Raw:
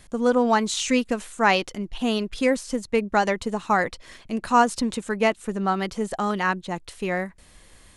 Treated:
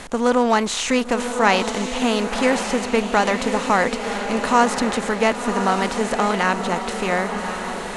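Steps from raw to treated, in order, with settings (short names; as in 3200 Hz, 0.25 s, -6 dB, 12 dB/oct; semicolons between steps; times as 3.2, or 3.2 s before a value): per-bin compression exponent 0.6; diffused feedback echo 1.08 s, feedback 54%, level -7 dB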